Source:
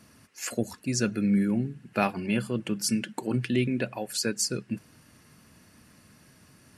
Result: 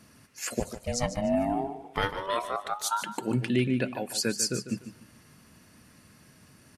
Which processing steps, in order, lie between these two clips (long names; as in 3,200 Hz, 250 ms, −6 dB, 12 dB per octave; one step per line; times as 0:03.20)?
0:00.59–0:03.02: ring modulation 290 Hz → 1,200 Hz
repeating echo 148 ms, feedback 29%, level −11.5 dB